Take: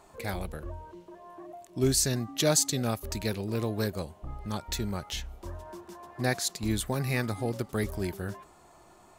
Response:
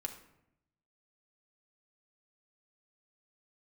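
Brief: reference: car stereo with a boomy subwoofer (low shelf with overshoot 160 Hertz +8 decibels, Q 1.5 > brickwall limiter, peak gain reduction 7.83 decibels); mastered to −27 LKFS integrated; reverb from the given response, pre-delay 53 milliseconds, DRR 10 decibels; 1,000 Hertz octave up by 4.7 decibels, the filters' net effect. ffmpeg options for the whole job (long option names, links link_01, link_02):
-filter_complex "[0:a]equalizer=frequency=1000:width_type=o:gain=6.5,asplit=2[link_01][link_02];[1:a]atrim=start_sample=2205,adelay=53[link_03];[link_02][link_03]afir=irnorm=-1:irlink=0,volume=-9dB[link_04];[link_01][link_04]amix=inputs=2:normalize=0,lowshelf=frequency=160:width_type=q:width=1.5:gain=8,volume=2dB,alimiter=limit=-15.5dB:level=0:latency=1"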